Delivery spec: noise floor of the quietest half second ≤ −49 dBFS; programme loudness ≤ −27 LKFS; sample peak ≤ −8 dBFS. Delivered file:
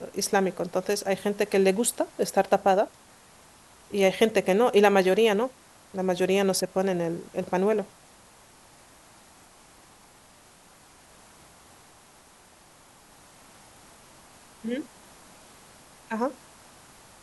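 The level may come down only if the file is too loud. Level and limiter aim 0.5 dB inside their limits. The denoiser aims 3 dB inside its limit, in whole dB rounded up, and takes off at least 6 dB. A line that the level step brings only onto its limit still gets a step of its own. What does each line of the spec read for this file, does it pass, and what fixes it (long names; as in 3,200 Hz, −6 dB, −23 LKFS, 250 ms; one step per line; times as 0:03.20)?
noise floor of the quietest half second −55 dBFS: in spec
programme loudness −25.0 LKFS: out of spec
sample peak −7.0 dBFS: out of spec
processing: level −2.5 dB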